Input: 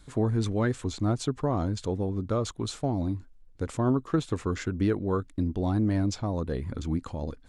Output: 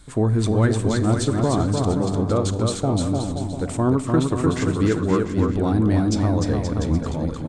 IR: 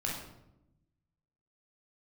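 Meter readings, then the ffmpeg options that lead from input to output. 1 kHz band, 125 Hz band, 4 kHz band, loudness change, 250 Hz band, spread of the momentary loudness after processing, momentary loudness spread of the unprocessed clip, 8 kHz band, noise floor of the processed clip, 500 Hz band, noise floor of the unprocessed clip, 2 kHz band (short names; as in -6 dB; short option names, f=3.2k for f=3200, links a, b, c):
+8.0 dB, +8.5 dB, +8.0 dB, +8.0 dB, +8.0 dB, 4 LU, 6 LU, +10.0 dB, -30 dBFS, +8.0 dB, -53 dBFS, +8.0 dB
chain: -filter_complex "[0:a]equalizer=f=8.4k:w=7:g=9.5,aecho=1:1:300|525|693.8|820.3|915.2:0.631|0.398|0.251|0.158|0.1,asplit=2[a][b];[1:a]atrim=start_sample=2205,adelay=37[c];[b][c]afir=irnorm=-1:irlink=0,volume=-19dB[d];[a][d]amix=inputs=2:normalize=0,volume=5.5dB"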